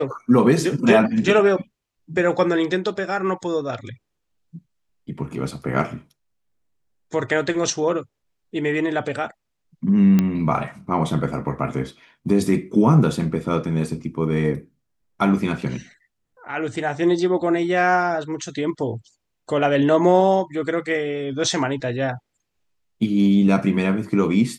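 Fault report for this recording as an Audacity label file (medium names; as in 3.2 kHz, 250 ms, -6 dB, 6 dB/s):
10.190000	10.190000	pop -7 dBFS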